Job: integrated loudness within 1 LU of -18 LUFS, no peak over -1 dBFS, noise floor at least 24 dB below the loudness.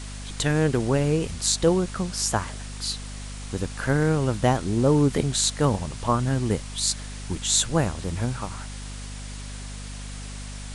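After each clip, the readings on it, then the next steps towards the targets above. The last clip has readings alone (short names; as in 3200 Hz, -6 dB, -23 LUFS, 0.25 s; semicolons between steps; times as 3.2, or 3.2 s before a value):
hum 50 Hz; harmonics up to 250 Hz; hum level -34 dBFS; noise floor -36 dBFS; noise floor target -49 dBFS; loudness -24.5 LUFS; peak -4.0 dBFS; loudness target -18.0 LUFS
-> de-hum 50 Hz, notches 5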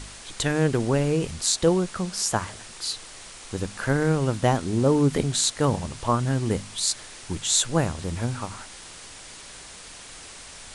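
hum none; noise floor -43 dBFS; noise floor target -49 dBFS
-> denoiser 6 dB, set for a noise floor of -43 dBFS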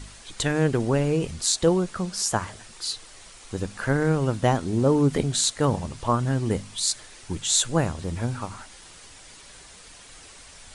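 noise floor -47 dBFS; noise floor target -49 dBFS
-> denoiser 6 dB, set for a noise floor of -47 dBFS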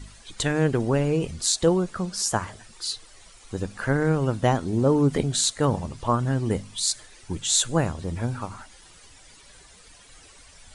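noise floor -51 dBFS; loudness -24.5 LUFS; peak -4.5 dBFS; loudness target -18.0 LUFS
-> gain +6.5 dB; limiter -1 dBFS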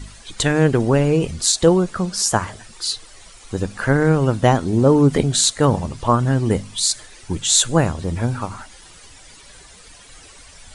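loudness -18.0 LUFS; peak -1.0 dBFS; noise floor -45 dBFS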